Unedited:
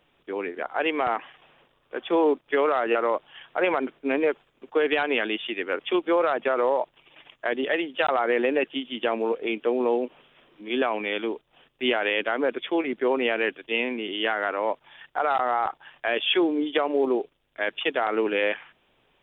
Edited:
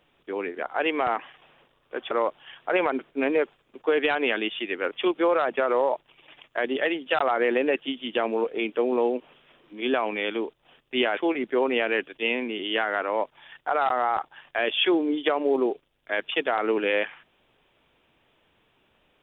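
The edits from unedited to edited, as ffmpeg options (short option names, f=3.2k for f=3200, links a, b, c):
-filter_complex "[0:a]asplit=3[a][b][c];[a]atrim=end=2.112[d];[b]atrim=start=2.988:end=12.052[e];[c]atrim=start=12.658[f];[d][e]acrossfade=d=0.004:c1=hsin:c2=hsin[g];[g][f]acrossfade=d=0.004:c1=hsin:c2=hsin"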